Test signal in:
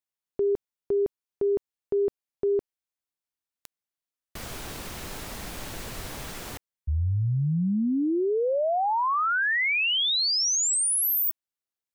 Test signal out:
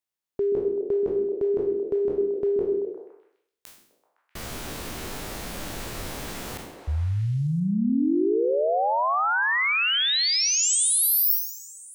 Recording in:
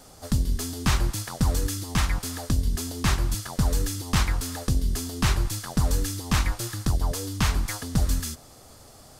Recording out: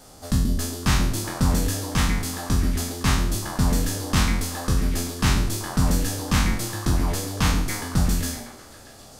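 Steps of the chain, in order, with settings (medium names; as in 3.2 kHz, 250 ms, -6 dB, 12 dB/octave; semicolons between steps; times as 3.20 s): spectral sustain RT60 0.64 s; repeats whose band climbs or falls 128 ms, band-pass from 270 Hz, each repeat 0.7 oct, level -1 dB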